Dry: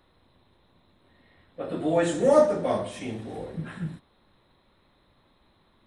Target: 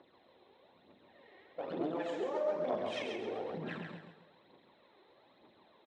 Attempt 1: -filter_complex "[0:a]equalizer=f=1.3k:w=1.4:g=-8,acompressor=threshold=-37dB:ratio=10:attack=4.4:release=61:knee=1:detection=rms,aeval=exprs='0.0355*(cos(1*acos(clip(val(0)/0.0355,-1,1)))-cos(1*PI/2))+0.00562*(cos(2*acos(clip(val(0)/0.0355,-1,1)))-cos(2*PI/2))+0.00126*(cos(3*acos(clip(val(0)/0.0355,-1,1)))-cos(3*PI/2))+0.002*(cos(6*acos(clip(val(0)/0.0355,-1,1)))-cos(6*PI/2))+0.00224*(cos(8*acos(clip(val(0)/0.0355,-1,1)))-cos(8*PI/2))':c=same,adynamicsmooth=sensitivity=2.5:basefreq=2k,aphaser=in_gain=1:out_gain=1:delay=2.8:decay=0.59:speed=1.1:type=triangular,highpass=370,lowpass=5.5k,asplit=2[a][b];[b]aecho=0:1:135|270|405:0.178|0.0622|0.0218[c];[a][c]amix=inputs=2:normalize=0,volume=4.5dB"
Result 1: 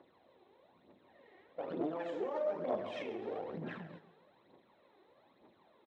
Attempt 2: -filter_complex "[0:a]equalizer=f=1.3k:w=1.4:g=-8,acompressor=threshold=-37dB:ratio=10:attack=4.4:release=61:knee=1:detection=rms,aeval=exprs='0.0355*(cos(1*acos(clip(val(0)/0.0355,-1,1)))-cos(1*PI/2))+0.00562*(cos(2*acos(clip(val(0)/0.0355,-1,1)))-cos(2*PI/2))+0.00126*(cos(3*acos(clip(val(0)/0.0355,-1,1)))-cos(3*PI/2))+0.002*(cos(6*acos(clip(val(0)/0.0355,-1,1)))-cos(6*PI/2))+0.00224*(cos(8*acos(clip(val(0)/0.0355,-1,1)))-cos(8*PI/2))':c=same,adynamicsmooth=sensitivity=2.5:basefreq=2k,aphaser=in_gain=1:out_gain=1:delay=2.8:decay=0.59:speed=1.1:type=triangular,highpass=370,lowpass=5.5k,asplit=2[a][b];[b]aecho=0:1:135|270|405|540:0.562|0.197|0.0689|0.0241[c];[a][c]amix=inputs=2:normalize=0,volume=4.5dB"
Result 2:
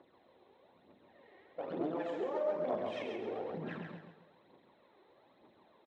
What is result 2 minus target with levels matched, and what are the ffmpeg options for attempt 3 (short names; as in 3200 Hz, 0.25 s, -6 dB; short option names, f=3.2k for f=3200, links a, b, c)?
4000 Hz band -5.5 dB
-filter_complex "[0:a]equalizer=f=1.3k:w=1.4:g=-8,acompressor=threshold=-37dB:ratio=10:attack=4.4:release=61:knee=1:detection=rms,highshelf=f=3.3k:g=10,aeval=exprs='0.0355*(cos(1*acos(clip(val(0)/0.0355,-1,1)))-cos(1*PI/2))+0.00562*(cos(2*acos(clip(val(0)/0.0355,-1,1)))-cos(2*PI/2))+0.00126*(cos(3*acos(clip(val(0)/0.0355,-1,1)))-cos(3*PI/2))+0.002*(cos(6*acos(clip(val(0)/0.0355,-1,1)))-cos(6*PI/2))+0.00224*(cos(8*acos(clip(val(0)/0.0355,-1,1)))-cos(8*PI/2))':c=same,adynamicsmooth=sensitivity=2.5:basefreq=2k,aphaser=in_gain=1:out_gain=1:delay=2.8:decay=0.59:speed=1.1:type=triangular,highpass=370,lowpass=5.5k,asplit=2[a][b];[b]aecho=0:1:135|270|405|540:0.562|0.197|0.0689|0.0241[c];[a][c]amix=inputs=2:normalize=0,volume=4.5dB"